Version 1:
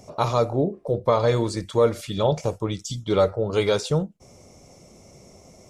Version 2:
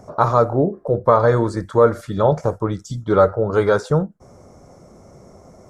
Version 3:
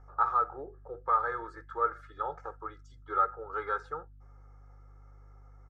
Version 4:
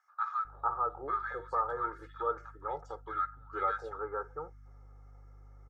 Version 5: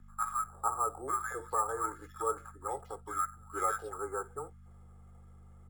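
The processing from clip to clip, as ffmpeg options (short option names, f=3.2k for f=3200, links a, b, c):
-af "highshelf=f=2k:t=q:w=3:g=-9,volume=4.5dB"
-af "bandpass=f=1.4k:t=q:w=3.2:csg=0,aeval=exprs='val(0)+0.00398*(sin(2*PI*50*n/s)+sin(2*PI*2*50*n/s)/2+sin(2*PI*3*50*n/s)/3+sin(2*PI*4*50*n/s)/4+sin(2*PI*5*50*n/s)/5)':c=same,aecho=1:1:2.4:0.88,volume=-8dB"
-filter_complex "[0:a]acrossover=split=1300[a][b];[a]adelay=450[c];[c][b]amix=inputs=2:normalize=0"
-af "acrusher=samples=5:mix=1:aa=0.000001,aeval=exprs='val(0)+0.00251*(sin(2*PI*50*n/s)+sin(2*PI*2*50*n/s)/2+sin(2*PI*3*50*n/s)/3+sin(2*PI*4*50*n/s)/4+sin(2*PI*5*50*n/s)/5)':c=same,afreqshift=-22"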